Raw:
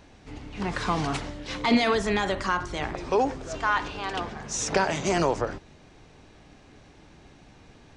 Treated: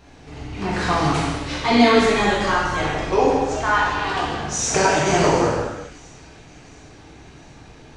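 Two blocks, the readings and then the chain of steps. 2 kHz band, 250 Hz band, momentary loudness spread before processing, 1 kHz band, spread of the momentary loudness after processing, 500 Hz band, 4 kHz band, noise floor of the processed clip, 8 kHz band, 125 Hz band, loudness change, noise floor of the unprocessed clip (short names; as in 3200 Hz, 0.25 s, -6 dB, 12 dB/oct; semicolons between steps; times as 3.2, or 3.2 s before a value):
+7.5 dB, +7.5 dB, 10 LU, +8.0 dB, 12 LU, +8.0 dB, +7.5 dB, -45 dBFS, +8.5 dB, +8.5 dB, +7.5 dB, -54 dBFS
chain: on a send: thin delay 0.709 s, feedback 53%, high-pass 2000 Hz, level -22 dB; on the sum: non-linear reverb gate 0.45 s falling, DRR -7 dB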